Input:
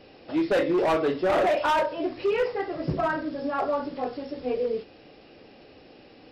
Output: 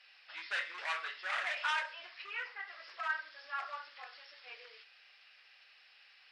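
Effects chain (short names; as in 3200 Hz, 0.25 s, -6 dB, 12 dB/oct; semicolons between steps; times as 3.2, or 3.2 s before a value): 2.22–2.68 high shelf 4100 Hz -11.5 dB; ladder high-pass 1300 Hz, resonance 30%; reverb, pre-delay 69 ms, DRR 17 dB; gain +2 dB; Nellymoser 44 kbps 22050 Hz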